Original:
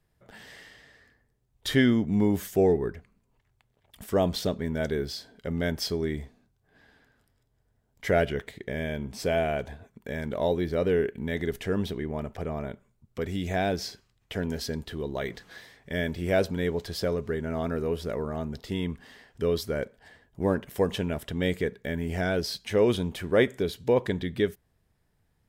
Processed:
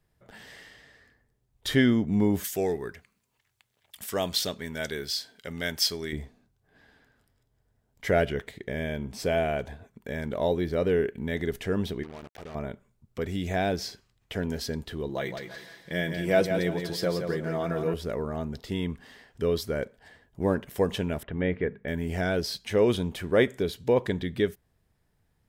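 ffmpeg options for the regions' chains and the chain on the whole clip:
ffmpeg -i in.wav -filter_complex "[0:a]asettb=1/sr,asplit=3[link_01][link_02][link_03];[link_01]atrim=end=2.444[link_04];[link_02]atrim=start=2.44:end=6.13,asetpts=PTS-STARTPTS,afade=type=in:duration=0.004:curve=qsin,afade=type=out:start_time=3.686:duration=0.004:curve=qsin,highpass=68,tiltshelf=frequency=1200:gain=-8[link_05];[link_03]atrim=start=6.126[link_06];[link_04][link_05]acrossfade=duration=0.004:curve1=hsin:curve2=qsin[link_07];[link_07][link_06]acrossfade=duration=0.004:curve1=qsin:curve2=hsin,asettb=1/sr,asplit=3[link_08][link_09][link_10];[link_08]atrim=end=12.034[link_11];[link_09]atrim=start=12.03:end=12.55,asetpts=PTS-STARTPTS,afade=type=in:duration=0.004:curve=qsin,afade=type=out:start_time=0.516:duration=0.004:curve=qsin,lowshelf=frequency=270:gain=-6.5,acompressor=threshold=-44dB:ratio=2:attack=3.2:release=140:knee=1:detection=peak,acrusher=bits=6:mix=0:aa=0.5[link_12];[link_10]atrim=start=12.546[link_13];[link_11][link_12]acrossfade=duration=0.004:curve1=hsin:curve2=qsin[link_14];[link_14][link_13]acrossfade=duration=0.004:curve1=qsin:curve2=hsin,asettb=1/sr,asplit=3[link_15][link_16][link_17];[link_15]atrim=end=15.094[link_18];[link_16]atrim=start=15.09:end=17.94,asetpts=PTS-STARTPTS,afade=type=in:duration=0.004:curve=qsin,afade=type=out:start_time=2.846:duration=0.004:curve=qsin,highpass=frequency=120:poles=1,aecho=1:1:6:0.53,atrim=end_sample=125685,aecho=1:1:170|340|510|680:0.447|0.13|0.0376|0.0109,atrim=end_sample=125685[link_19];[link_17]atrim=start=17.936[link_20];[link_18][link_19]acrossfade=duration=0.004:curve1=hsin:curve2=qsin[link_21];[link_21][link_20]acrossfade=duration=0.004:curve1=qsin:curve2=hsin,asettb=1/sr,asplit=3[link_22][link_23][link_24];[link_22]atrim=end=21.234[link_25];[link_23]atrim=start=21.23:end=21.88,asetpts=PTS-STARTPTS,afade=type=in:duration=0.004:curve=qsin,afade=type=out:start_time=0.646:duration=0.004:curve=qsin,lowpass=frequency=2400:width=0.5412,lowpass=frequency=2400:width=1.3066,bandreject=frequency=50:width_type=h:width=6,bandreject=frequency=100:width_type=h:width=6,bandreject=frequency=150:width_type=h:width=6,bandreject=frequency=200:width_type=h:width=6,bandreject=frequency=250:width_type=h:width=6[link_26];[link_24]atrim=start=21.876[link_27];[link_25][link_26]acrossfade=duration=0.004:curve1=hsin:curve2=qsin[link_28];[link_28][link_27]acrossfade=duration=0.004:curve1=qsin:curve2=hsin" out.wav

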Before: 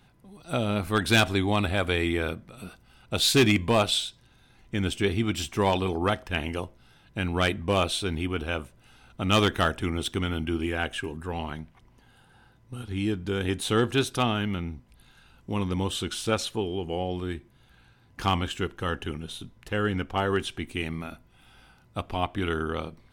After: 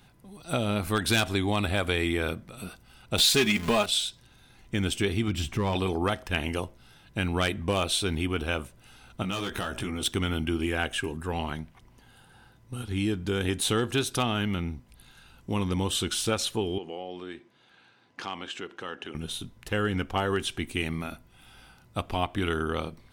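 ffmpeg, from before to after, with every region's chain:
ffmpeg -i in.wav -filter_complex "[0:a]asettb=1/sr,asplit=3[link_01][link_02][link_03];[link_01]atrim=end=3.184[link_04];[link_02]atrim=start=3.18:end=3.86,asetpts=PTS-STARTPTS,afade=type=in:duration=0.004:curve=qsin,afade=type=out:start_time=0.676:duration=0.004:curve=qsin,aeval=exprs='val(0)+0.5*0.0237*sgn(val(0))':channel_layout=same,equalizer=frequency=2200:width=0.44:gain=3.5,aecho=1:1:4.8:0.64,atrim=end_sample=29988[link_05];[link_03]atrim=start=3.856[link_06];[link_04][link_05]acrossfade=duration=0.004:curve1=hsin:curve2=qsin[link_07];[link_07][link_06]acrossfade=duration=0.004:curve1=qsin:curve2=hsin,asettb=1/sr,asplit=3[link_08][link_09][link_10];[link_08]atrim=end=5.284[link_11];[link_09]atrim=start=5.28:end=5.75,asetpts=PTS-STARTPTS,afade=type=in:duration=0.004:curve=qsin,afade=type=out:start_time=0.466:duration=0.004:curve=qsin,bass=frequency=250:gain=8,treble=frequency=4000:gain=-8,asoftclip=type=hard:threshold=-15dB,acompressor=threshold=-31dB:ratio=1.5:attack=3.2:release=140:knee=1:detection=peak[link_12];[link_10]atrim=start=5.746[link_13];[link_11][link_12]acrossfade=duration=0.004:curve1=hsin:curve2=qsin[link_14];[link_14][link_13]acrossfade=duration=0.004:curve1=qsin:curve2=hsin,asettb=1/sr,asplit=3[link_15][link_16][link_17];[link_15]atrim=end=9.224[link_18];[link_16]atrim=start=9.22:end=10.03,asetpts=PTS-STARTPTS,afade=type=in:duration=0.004:curve=qsin,afade=type=out:start_time=0.806:duration=0.004:curve=qsin,asplit=2[link_19][link_20];[link_20]adelay=16,volume=-3dB[link_21];[link_19][link_21]amix=inputs=2:normalize=0,atrim=end_sample=35721,acompressor=threshold=-29dB:ratio=16:attack=3.2:release=140:knee=1:detection=peak,bandreject=frequency=2000:width=30[link_22];[link_17]atrim=start=10.026[link_23];[link_18][link_22]acrossfade=duration=0.004:curve1=hsin:curve2=qsin[link_24];[link_24][link_23]acrossfade=duration=0.004:curve1=qsin:curve2=hsin,asettb=1/sr,asplit=3[link_25][link_26][link_27];[link_25]atrim=end=16.784[link_28];[link_26]atrim=start=16.78:end=19.15,asetpts=PTS-STARTPTS,afade=type=in:duration=0.004:curve=qsin,afade=type=out:start_time=2.366:duration=0.004:curve=qsin,acompressor=threshold=-35dB:ratio=3:attack=3.2:release=140:knee=1:detection=peak,highpass=270,lowpass=5200[link_29];[link_27]atrim=start=19.146[link_30];[link_28][link_29]acrossfade=duration=0.004:curve1=hsin:curve2=qsin[link_31];[link_31][link_30]acrossfade=duration=0.004:curve1=qsin:curve2=hsin,acompressor=threshold=-25dB:ratio=3,highshelf=frequency=4600:gain=5.5,volume=1.5dB" out.wav

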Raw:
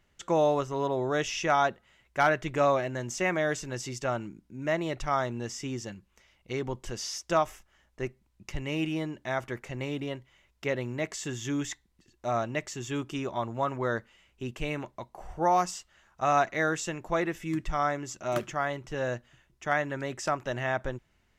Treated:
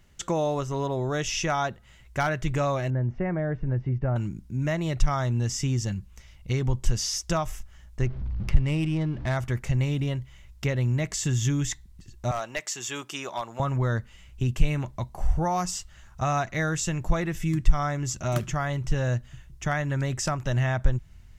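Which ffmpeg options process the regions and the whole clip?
ffmpeg -i in.wav -filter_complex "[0:a]asettb=1/sr,asplit=3[link_01][link_02][link_03];[link_01]atrim=end=2.904[link_04];[link_02]atrim=start=2.9:end=4.16,asetpts=PTS-STARTPTS,afade=type=in:duration=0.004:curve=qsin,afade=type=out:start_time=1.256:duration=0.004:curve=qsin,lowpass=frequency=1600:width=0.5412,lowpass=frequency=1600:width=1.3066,equalizer=frequency=1200:width_type=o:width=0.87:gain=-8[link_05];[link_03]atrim=start=4.156[link_06];[link_04][link_05]acrossfade=duration=0.004:curve1=hsin:curve2=qsin[link_07];[link_07][link_06]acrossfade=duration=0.004:curve1=qsin:curve2=hsin,asettb=1/sr,asplit=3[link_08][link_09][link_10];[link_08]atrim=end=8.064[link_11];[link_09]atrim=start=8.06:end=9.37,asetpts=PTS-STARTPTS,afade=type=in:duration=0.004:curve=qsin,afade=type=out:start_time=1.306:duration=0.004:curve=qsin,aeval=exprs='val(0)+0.5*0.00562*sgn(val(0))':channel_layout=same,lowpass=frequency=5500:width=0.5412,lowpass=frequency=5500:width=1.3066,adynamicsmooth=sensitivity=5:basefreq=1900[link_12];[link_10]atrim=start=9.366[link_13];[link_11][link_12]acrossfade=duration=0.004:curve1=hsin:curve2=qsin[link_14];[link_14][link_13]acrossfade=duration=0.004:curve1=qsin:curve2=hsin,asettb=1/sr,asplit=3[link_15][link_16][link_17];[link_15]atrim=end=12.314[link_18];[link_16]atrim=start=12.31:end=13.6,asetpts=PTS-STARTPTS,afade=type=in:duration=0.004:curve=qsin,afade=type=out:start_time=1.286:duration=0.004:curve=qsin,highpass=570,volume=23dB,asoftclip=hard,volume=-23dB[link_19];[link_17]atrim=start=13.596[link_20];[link_18][link_19]acrossfade=duration=0.004:curve1=hsin:curve2=qsin[link_21];[link_21][link_20]acrossfade=duration=0.004:curve1=qsin:curve2=hsin,bass=frequency=250:gain=7,treble=frequency=4000:gain=6,acompressor=threshold=-33dB:ratio=2,asubboost=boost=3.5:cutoff=150,volume=5dB" out.wav

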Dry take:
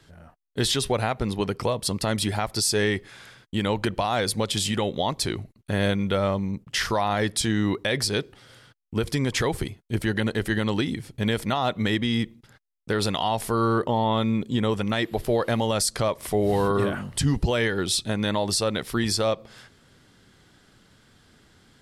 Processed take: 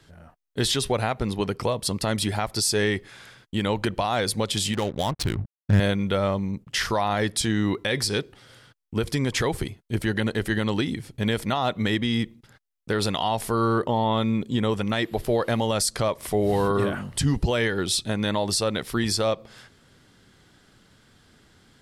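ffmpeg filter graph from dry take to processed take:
ffmpeg -i in.wav -filter_complex "[0:a]asettb=1/sr,asplit=3[link_01][link_02][link_03];[link_01]atrim=end=4.734[link_04];[link_02]atrim=start=4.73:end=5.8,asetpts=PTS-STARTPTS,afade=type=in:duration=0.004:curve=qsin,afade=type=out:start_time=1.066:duration=0.004:curve=qsin,aeval=exprs='sgn(val(0))*max(abs(val(0))-0.00631,0)':channel_layout=same,asubboost=boost=12:cutoff=200,adynamicsmooth=sensitivity=6:basefreq=540[link_05];[link_03]atrim=start=5.796[link_06];[link_04][link_05]acrossfade=duration=0.004:curve1=hsin:curve2=qsin[link_07];[link_07][link_06]acrossfade=duration=0.004:curve1=qsin:curve2=hsin,asettb=1/sr,asplit=3[link_08][link_09][link_10];[link_08]atrim=end=7.744[link_11];[link_09]atrim=start=7.74:end=8.19,asetpts=PTS-STARTPTS,afade=type=in:duration=0.004:curve=qsin,afade=type=out:start_time=0.446:duration=0.004:curve=qsin,bandreject=frequency=640:width=7.7,bandreject=frequency=338.1:width_type=h:width=4,bandreject=frequency=676.2:width_type=h:width=4,bandreject=frequency=1014.3:width_type=h:width=4,bandreject=frequency=1352.4:width_type=h:width=4,bandreject=frequency=1690.5:width_type=h:width=4,bandreject=frequency=2028.6:width_type=h:width=4,bandreject=frequency=2366.7:width_type=h:width=4,bandreject=frequency=2704.8:width_type=h:width=4,bandreject=frequency=3042.9:width_type=h:width=4,bandreject=frequency=3381:width_type=h:width=4,bandreject=frequency=3719.1:width_type=h:width=4,bandreject=frequency=4057.2:width_type=h:width=4,bandreject=frequency=4395.3:width_type=h:width=4,bandreject=frequency=4733.4:width_type=h:width=4,bandreject=frequency=5071.5:width_type=h:width=4,bandreject=frequency=5409.6:width_type=h:width=4,bandreject=frequency=5747.7:width_type=h:width=4,bandreject=frequency=6085.8:width_type=h:width=4,bandreject=frequency=6423.9:width_type=h:width=4,bandreject=frequency=6762:width_type=h:width=4,bandreject=frequency=7100.1:width_type=h:width=4,bandreject=frequency=7438.2:width_type=h:width=4,bandreject=frequency=7776.3:width_type=h:width=4,bandreject=frequency=8114.4:width_type=h:width=4,bandreject=frequency=8452.5:width_type=h:width=4,bandreject=frequency=8790.6:width_type=h:width=4,bandreject=frequency=9128.7:width_type=h:width=4,bandreject=frequency=9466.8:width_type=h:width=4,bandreject=frequency=9804.9:width_type=h:width=4,bandreject=frequency=10143:width_type=h:width=4,bandreject=frequency=10481.1:width_type=h:width=4[link_12];[link_10]atrim=start=8.186[link_13];[link_11][link_12]acrossfade=duration=0.004:curve1=hsin:curve2=qsin[link_14];[link_14][link_13]acrossfade=duration=0.004:curve1=qsin:curve2=hsin" out.wav

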